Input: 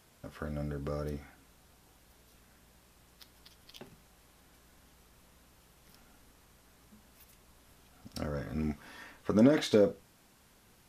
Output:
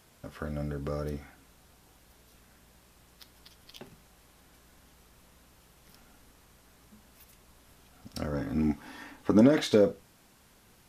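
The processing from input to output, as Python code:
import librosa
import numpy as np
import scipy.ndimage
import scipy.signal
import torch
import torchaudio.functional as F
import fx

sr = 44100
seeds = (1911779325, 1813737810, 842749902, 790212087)

y = fx.small_body(x, sr, hz=(280.0, 830.0), ring_ms=45, db=10, at=(8.32, 9.41))
y = y * librosa.db_to_amplitude(2.5)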